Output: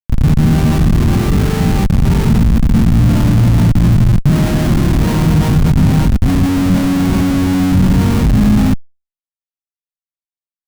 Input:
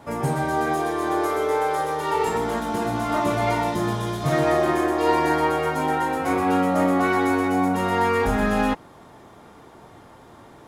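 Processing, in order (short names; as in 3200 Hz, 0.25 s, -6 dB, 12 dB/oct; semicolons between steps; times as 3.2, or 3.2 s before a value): in parallel at -10 dB: decimation with a swept rate 32×, swing 100% 3.8 Hz; on the sum: added harmonics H 3 -36 dB, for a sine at -4.5 dBFS; doubler 18 ms -7.5 dB; Schmitt trigger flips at -18.5 dBFS; resonant low shelf 290 Hz +10.5 dB, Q 1.5; reverse; upward compressor, threshold -21 dBFS; reverse; gain +2 dB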